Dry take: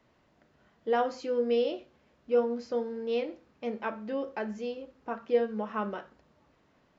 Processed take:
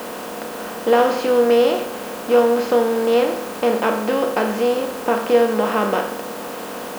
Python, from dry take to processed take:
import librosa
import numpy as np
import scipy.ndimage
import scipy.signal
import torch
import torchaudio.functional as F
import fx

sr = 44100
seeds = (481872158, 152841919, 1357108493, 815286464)

y = fx.bin_compress(x, sr, power=0.4)
y = fx.quant_dither(y, sr, seeds[0], bits=8, dither='triangular')
y = y * librosa.db_to_amplitude(8.5)